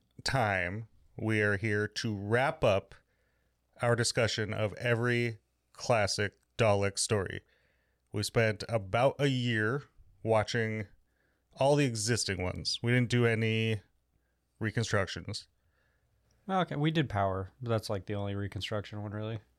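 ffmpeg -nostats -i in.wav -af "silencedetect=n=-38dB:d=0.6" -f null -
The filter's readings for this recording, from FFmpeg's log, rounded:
silence_start: 2.92
silence_end: 3.81 | silence_duration: 0.89
silence_start: 7.38
silence_end: 8.14 | silence_duration: 0.77
silence_start: 10.83
silence_end: 11.59 | silence_duration: 0.76
silence_start: 13.78
silence_end: 14.61 | silence_duration: 0.83
silence_start: 15.40
silence_end: 16.48 | silence_duration: 1.08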